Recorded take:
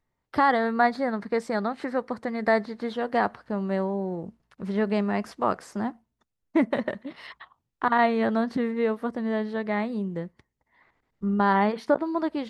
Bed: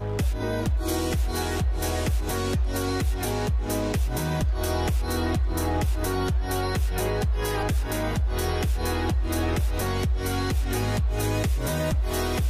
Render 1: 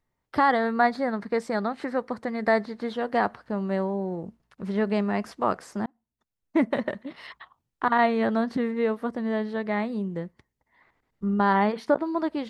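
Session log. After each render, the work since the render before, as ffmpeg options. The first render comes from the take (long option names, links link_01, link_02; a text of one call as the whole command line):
ffmpeg -i in.wav -filter_complex "[0:a]asplit=2[link_01][link_02];[link_01]atrim=end=5.86,asetpts=PTS-STARTPTS,afade=type=out:start_time=5.856:duration=0.004:curve=hsin[link_03];[link_02]atrim=start=5.86,asetpts=PTS-STARTPTS,afade=type=in:duration=0.76[link_04];[link_03][link_04]concat=n=2:v=0:a=1" out.wav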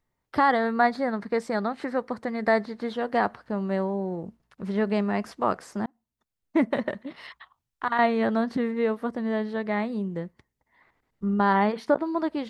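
ffmpeg -i in.wav -filter_complex "[0:a]asettb=1/sr,asplit=3[link_01][link_02][link_03];[link_01]atrim=end=7.294[link_04];[link_02]atrim=start=7.29:end=7.99,asetpts=PTS-STARTPTS,afade=type=in:duration=0.004:curve=qsin,afade=type=out:start_time=0.696:duration=0.004:curve=qsin,equalizer=frequency=290:width=0.37:gain=-8.5[link_05];[link_03]atrim=start=7.986[link_06];[link_04][link_05]acrossfade=duration=0.004:curve1=hsin:curve2=qsin[link_07];[link_07][link_06]acrossfade=duration=0.004:curve1=qsin:curve2=hsin" out.wav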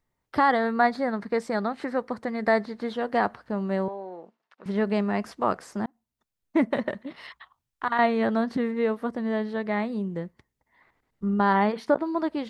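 ffmpeg -i in.wav -filter_complex "[0:a]asettb=1/sr,asplit=3[link_01][link_02][link_03];[link_01]atrim=end=3.884[link_04];[link_02]atrim=start=3.88:end=4.66,asetpts=PTS-STARTPTS,afade=type=in:duration=0.004:curve=qsin,afade=type=out:start_time=0.776:duration=0.004:curve=qsin,highpass=580,lowpass=4300[link_05];[link_03]atrim=start=4.656[link_06];[link_04][link_05]acrossfade=duration=0.004:curve1=hsin:curve2=qsin[link_07];[link_07][link_06]acrossfade=duration=0.004:curve1=qsin:curve2=hsin" out.wav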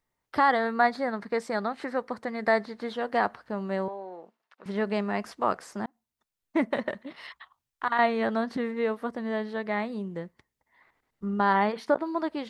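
ffmpeg -i in.wav -af "lowshelf=frequency=360:gain=-6.5" out.wav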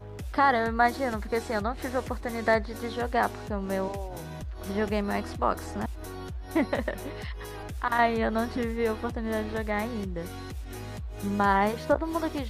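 ffmpeg -i in.wav -i bed.wav -filter_complex "[1:a]volume=-13dB[link_01];[0:a][link_01]amix=inputs=2:normalize=0" out.wav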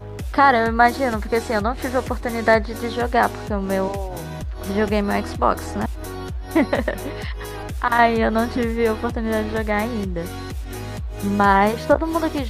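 ffmpeg -i in.wav -af "volume=8dB" out.wav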